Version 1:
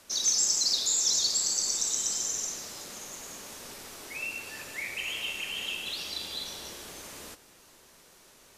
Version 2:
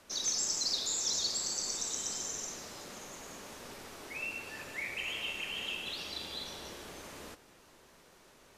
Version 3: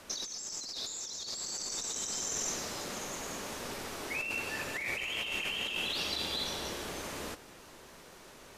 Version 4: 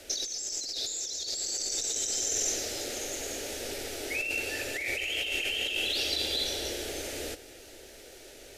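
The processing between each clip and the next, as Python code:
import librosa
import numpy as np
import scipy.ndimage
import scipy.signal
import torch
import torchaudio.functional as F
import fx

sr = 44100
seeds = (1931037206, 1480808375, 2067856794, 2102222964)

y1 = fx.high_shelf(x, sr, hz=3800.0, db=-10.0)
y2 = fx.over_compress(y1, sr, threshold_db=-41.0, ratio=-1.0)
y2 = y2 * 10.0 ** (4.0 / 20.0)
y3 = fx.fixed_phaser(y2, sr, hz=440.0, stages=4)
y3 = y3 * 10.0 ** (6.0 / 20.0)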